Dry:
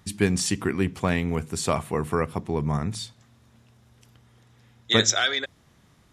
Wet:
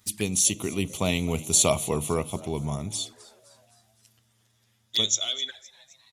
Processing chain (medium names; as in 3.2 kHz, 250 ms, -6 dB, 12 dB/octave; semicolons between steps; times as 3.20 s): Doppler pass-by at 1.66 s, 10 m/s, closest 7.4 m; treble shelf 2 kHz +11 dB; frequency-shifting echo 257 ms, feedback 55%, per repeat +140 Hz, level -21 dB; touch-sensitive flanger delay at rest 10.1 ms, full sweep at -28.5 dBFS; treble shelf 6.3 kHz +9 dB; small resonant body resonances 630/3400 Hz, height 8 dB, ringing for 95 ms